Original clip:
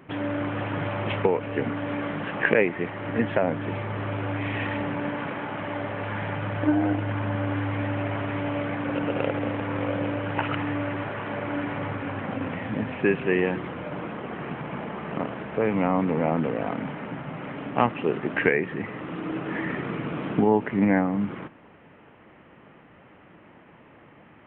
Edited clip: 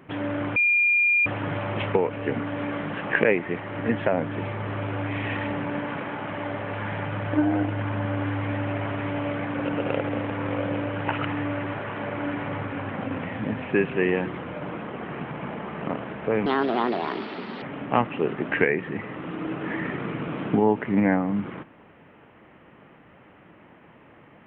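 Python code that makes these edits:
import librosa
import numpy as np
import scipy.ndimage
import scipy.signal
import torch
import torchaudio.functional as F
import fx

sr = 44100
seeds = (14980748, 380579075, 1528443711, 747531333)

y = fx.edit(x, sr, fx.insert_tone(at_s=0.56, length_s=0.7, hz=2410.0, db=-17.0),
    fx.speed_span(start_s=15.76, length_s=1.71, speed=1.47), tone=tone)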